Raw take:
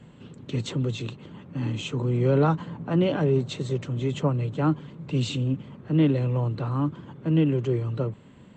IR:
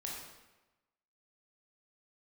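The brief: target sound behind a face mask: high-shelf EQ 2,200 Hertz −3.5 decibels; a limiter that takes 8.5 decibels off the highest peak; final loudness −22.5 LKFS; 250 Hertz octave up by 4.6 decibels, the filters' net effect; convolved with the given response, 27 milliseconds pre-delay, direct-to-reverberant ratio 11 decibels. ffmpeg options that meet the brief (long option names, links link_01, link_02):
-filter_complex "[0:a]equalizer=frequency=250:width_type=o:gain=6.5,alimiter=limit=-15dB:level=0:latency=1,asplit=2[link_01][link_02];[1:a]atrim=start_sample=2205,adelay=27[link_03];[link_02][link_03]afir=irnorm=-1:irlink=0,volume=-11dB[link_04];[link_01][link_04]amix=inputs=2:normalize=0,highshelf=frequency=2200:gain=-3.5,volume=3dB"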